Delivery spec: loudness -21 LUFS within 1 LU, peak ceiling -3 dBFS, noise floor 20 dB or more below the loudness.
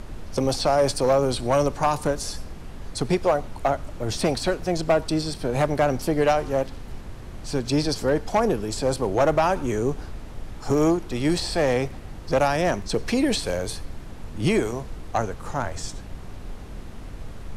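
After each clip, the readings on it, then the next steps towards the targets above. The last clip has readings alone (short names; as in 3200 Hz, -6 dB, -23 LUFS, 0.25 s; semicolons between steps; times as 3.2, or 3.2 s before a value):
clipped 0.7%; flat tops at -13.0 dBFS; noise floor -38 dBFS; noise floor target -44 dBFS; loudness -24.0 LUFS; peak -13.0 dBFS; loudness target -21.0 LUFS
-> clip repair -13 dBFS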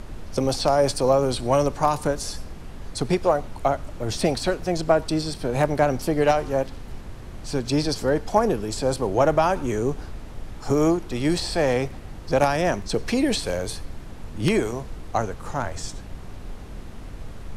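clipped 0.0%; noise floor -38 dBFS; noise floor target -44 dBFS
-> noise print and reduce 6 dB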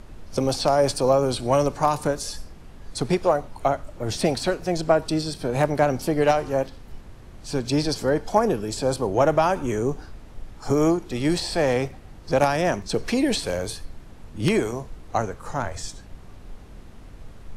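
noise floor -44 dBFS; loudness -23.5 LUFS; peak -4.0 dBFS; loudness target -21.0 LUFS
-> gain +2.5 dB; limiter -3 dBFS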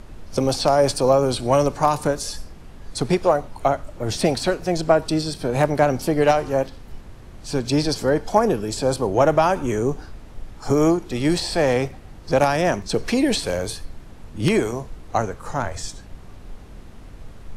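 loudness -21.0 LUFS; peak -3.0 dBFS; noise floor -41 dBFS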